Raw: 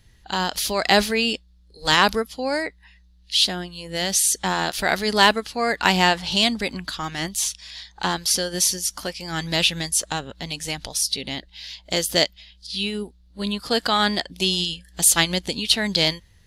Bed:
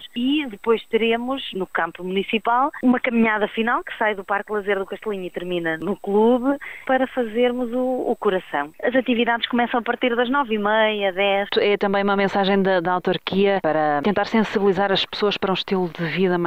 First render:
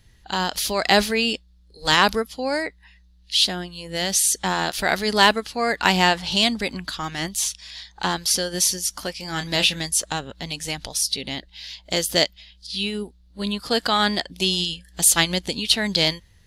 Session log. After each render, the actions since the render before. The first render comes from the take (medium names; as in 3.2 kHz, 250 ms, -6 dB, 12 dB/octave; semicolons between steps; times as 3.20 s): 9.15–9.81 s: doubling 27 ms -9.5 dB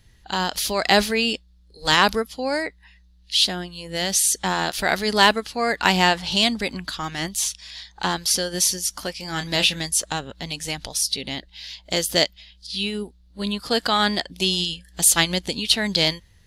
no audible change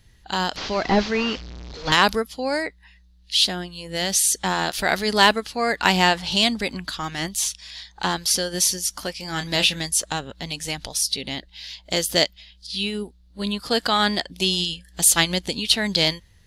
0.56–1.92 s: one-bit delta coder 32 kbps, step -30.5 dBFS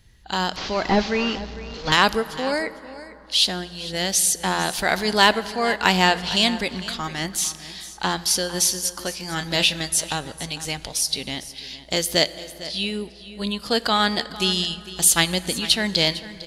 delay 453 ms -16 dB; plate-style reverb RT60 3.7 s, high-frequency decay 0.45×, DRR 15.5 dB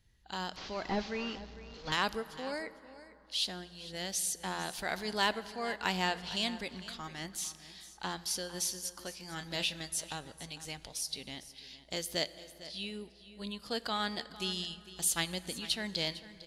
trim -14.5 dB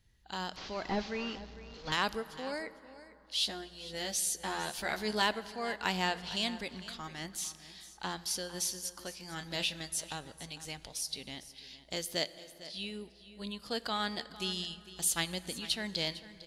3.34–5.22 s: doubling 14 ms -4.5 dB; 12.05–12.77 s: peaking EQ 60 Hz -12 dB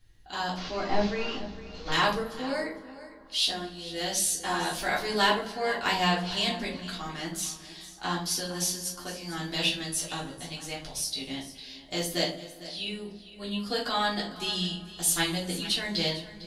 simulated room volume 190 m³, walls furnished, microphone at 3.3 m